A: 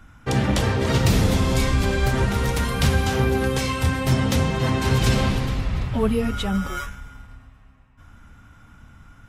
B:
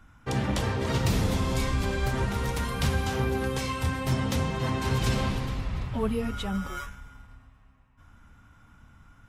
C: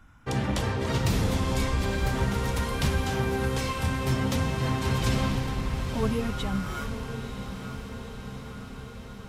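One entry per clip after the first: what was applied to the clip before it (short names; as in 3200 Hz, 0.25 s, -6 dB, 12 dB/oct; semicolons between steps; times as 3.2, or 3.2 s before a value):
bell 1000 Hz +3 dB 0.45 oct; gain -7 dB
diffused feedback echo 0.961 s, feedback 66%, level -9 dB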